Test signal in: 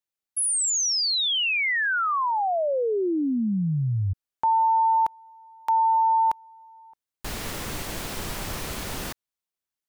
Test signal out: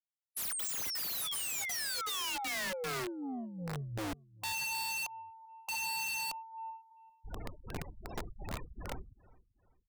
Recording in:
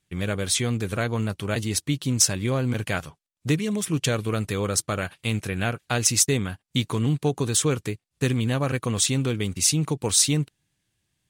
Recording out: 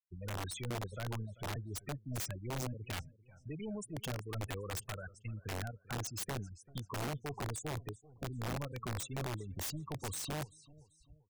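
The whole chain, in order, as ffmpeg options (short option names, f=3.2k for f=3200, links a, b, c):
-filter_complex "[0:a]areverse,acompressor=mode=upward:threshold=-35dB:ratio=4:attack=7.3:release=819:knee=2.83:detection=peak,areverse,tremolo=f=2.7:d=0.78,acrossover=split=210[a][b];[b]acompressor=threshold=-30dB:ratio=3:attack=0.21:release=95:knee=2.83:detection=peak[c];[a][c]amix=inputs=2:normalize=0,asoftclip=type=tanh:threshold=-30dB,aeval=exprs='val(0)+0.00141*(sin(2*PI*50*n/s)+sin(2*PI*2*50*n/s)/2+sin(2*PI*3*50*n/s)/3+sin(2*PI*4*50*n/s)/4+sin(2*PI*5*50*n/s)/5)':c=same,afftfilt=real='re*gte(hypot(re,im),0.0251)':imag='im*gte(hypot(re,im),0.0251)':win_size=1024:overlap=0.75,equalizer=f=200:w=0.84:g=-8.5,asplit=2[d][e];[e]aecho=0:1:390|780|1170:0.0944|0.0349|0.0129[f];[d][f]amix=inputs=2:normalize=0,aeval=exprs='(mod(47.3*val(0)+1,2)-1)/47.3':c=same"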